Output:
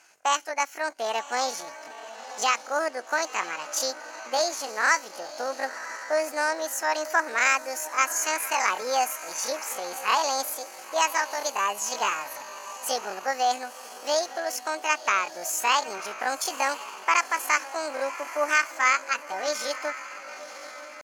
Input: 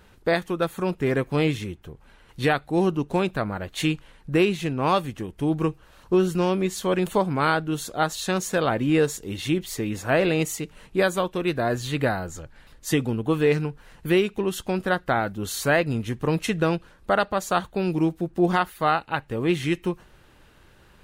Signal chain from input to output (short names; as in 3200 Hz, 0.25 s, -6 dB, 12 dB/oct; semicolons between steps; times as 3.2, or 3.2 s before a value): speaker cabinet 470–8100 Hz, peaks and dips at 920 Hz +4 dB, 2100 Hz -9 dB, 3900 Hz +9 dB, 5700 Hz +4 dB; diffused feedback echo 1.01 s, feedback 43%, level -12.5 dB; pitch shift +9 st